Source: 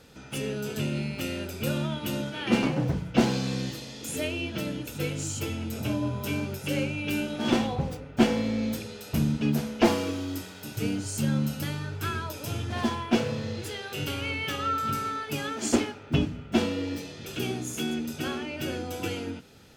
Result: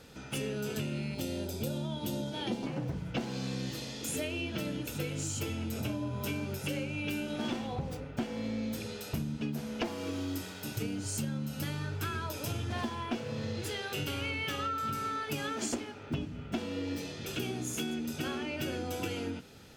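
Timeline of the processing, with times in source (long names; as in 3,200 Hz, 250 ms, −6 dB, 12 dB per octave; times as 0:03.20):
0:01.14–0:02.66: gain on a spectral selection 1,000–3,100 Hz −9 dB
whole clip: downward compressor 16 to 1, threshold −31 dBFS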